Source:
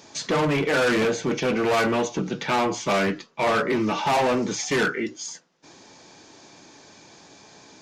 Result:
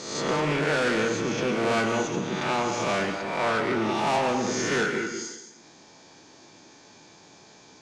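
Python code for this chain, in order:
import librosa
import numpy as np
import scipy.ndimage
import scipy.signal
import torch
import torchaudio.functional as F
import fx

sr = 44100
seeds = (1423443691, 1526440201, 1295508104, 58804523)

y = fx.spec_swells(x, sr, rise_s=0.97)
y = scipy.signal.sosfilt(scipy.signal.butter(4, 10000.0, 'lowpass', fs=sr, output='sos'), y)
y = fx.rev_plate(y, sr, seeds[0], rt60_s=0.99, hf_ratio=0.75, predelay_ms=105, drr_db=6.5)
y = y * librosa.db_to_amplitude(-6.0)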